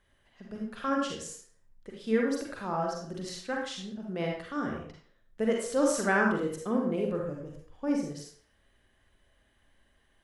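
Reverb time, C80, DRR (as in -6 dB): 0.50 s, 6.0 dB, -1.0 dB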